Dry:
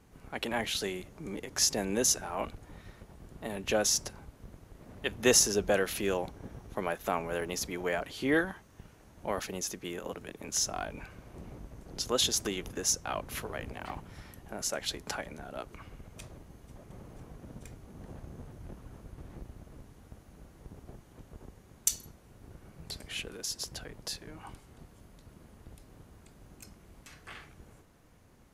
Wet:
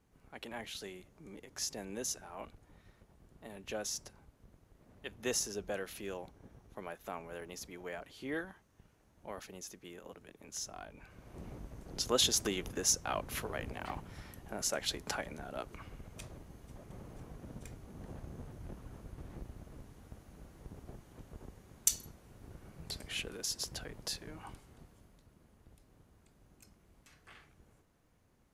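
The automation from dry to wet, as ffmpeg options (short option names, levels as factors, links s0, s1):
-af "volume=0.891,afade=t=in:st=11:d=0.44:silence=0.298538,afade=t=out:st=24.28:d=1.02:silence=0.354813"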